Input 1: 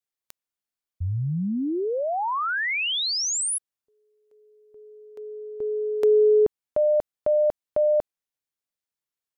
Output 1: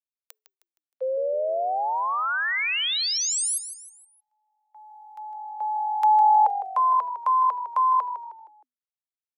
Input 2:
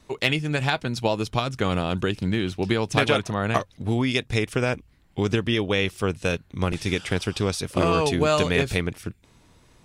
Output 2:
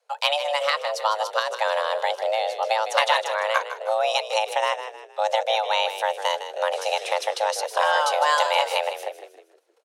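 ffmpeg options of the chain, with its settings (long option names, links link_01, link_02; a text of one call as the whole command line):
ffmpeg -i in.wav -filter_complex "[0:a]agate=range=-17dB:threshold=-52dB:ratio=16:release=120:detection=rms,afreqshift=430,asplit=5[link_01][link_02][link_03][link_04][link_05];[link_02]adelay=156,afreqshift=-46,volume=-11dB[link_06];[link_03]adelay=312,afreqshift=-92,volume=-19dB[link_07];[link_04]adelay=468,afreqshift=-138,volume=-26.9dB[link_08];[link_05]adelay=624,afreqshift=-184,volume=-34.9dB[link_09];[link_01][link_06][link_07][link_08][link_09]amix=inputs=5:normalize=0" out.wav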